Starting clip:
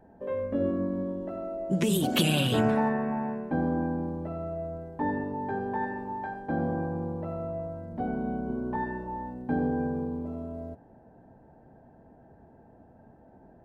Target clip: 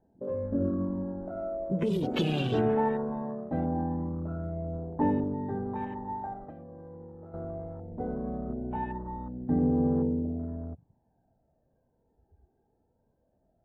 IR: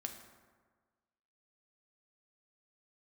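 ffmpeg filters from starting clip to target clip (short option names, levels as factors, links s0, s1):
-filter_complex "[0:a]afwtdn=0.0112,tiltshelf=f=1100:g=5.5,asettb=1/sr,asplit=3[s0][s1][s2];[s0]atrim=end=6.434[s3];[s1]atrim=start=6.43:end=7.34,asetpts=PTS-STARTPTS,afade=t=in:d=0.004:c=qsin,afade=t=out:st=0.906:d=0.004:c=qsin,acompressor=threshold=0.0158:ratio=20[s4];[s2]atrim=start=7.336[s5];[s3][s4]acrossfade=d=0.004:c1=hsin:c2=qsin[s6];[s6][s5]acrossfade=d=0.004:c1=qsin:c2=hsin,aphaser=in_gain=1:out_gain=1:delay=2.6:decay=0.49:speed=0.2:type=triangular,volume=0.531" -ar 44100 -c:a aac -b:a 64k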